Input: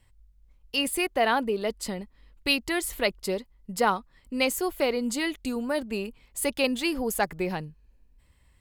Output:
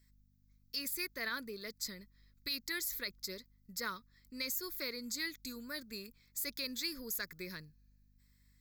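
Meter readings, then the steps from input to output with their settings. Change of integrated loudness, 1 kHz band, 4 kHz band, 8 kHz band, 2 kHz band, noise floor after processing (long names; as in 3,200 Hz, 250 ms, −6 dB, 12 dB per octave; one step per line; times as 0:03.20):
−12.0 dB, −21.5 dB, −8.5 dB, −8.0 dB, −11.5 dB, −70 dBFS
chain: first-order pre-emphasis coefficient 0.9
phaser with its sweep stopped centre 2,900 Hz, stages 6
brickwall limiter −30.5 dBFS, peak gain reduction 8.5 dB
mains hum 50 Hz, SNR 26 dB
level +4 dB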